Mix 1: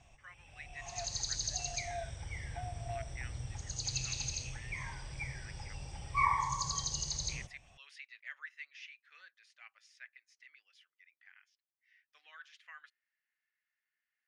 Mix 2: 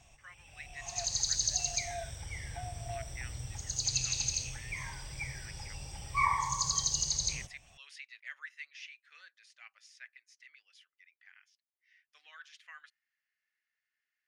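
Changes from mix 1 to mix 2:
background: remove steep low-pass 11000 Hz 96 dB/oct; master: add high shelf 4600 Hz +10 dB

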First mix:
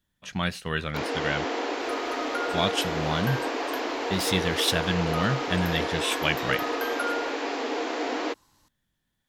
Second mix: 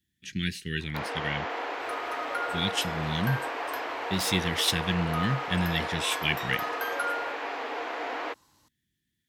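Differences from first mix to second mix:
speech: add elliptic band-stop 370–1800 Hz, stop band 50 dB; first sound: add three-band isolator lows -14 dB, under 580 Hz, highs -14 dB, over 3000 Hz; master: add HPF 64 Hz

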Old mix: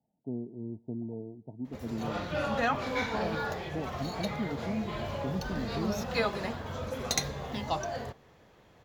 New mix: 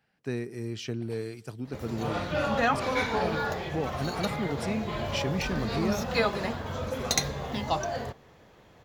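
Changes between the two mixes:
speech: remove rippled Chebyshev low-pass 940 Hz, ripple 9 dB; background +3.5 dB

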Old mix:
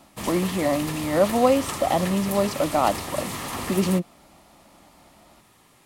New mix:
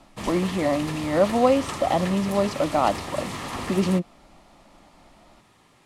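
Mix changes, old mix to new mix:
speech: remove HPF 51 Hz; master: add air absorption 52 m

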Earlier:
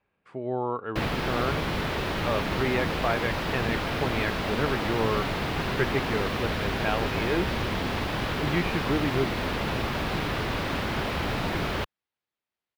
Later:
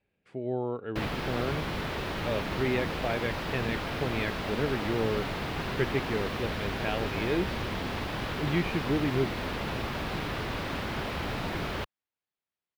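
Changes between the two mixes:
speech: add bell 1100 Hz -14 dB 0.89 oct; background -4.5 dB

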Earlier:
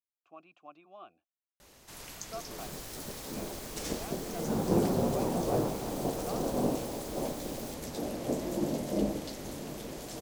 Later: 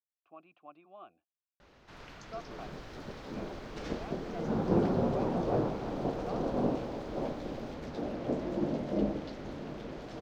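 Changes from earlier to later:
first sound: add bell 1400 Hz +4 dB 0.46 oct; master: add air absorption 240 m

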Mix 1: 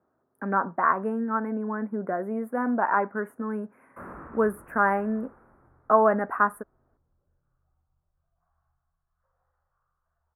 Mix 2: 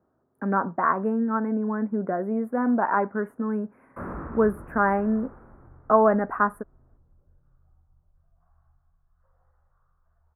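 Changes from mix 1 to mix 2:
background +4.5 dB; master: add tilt -2 dB/oct

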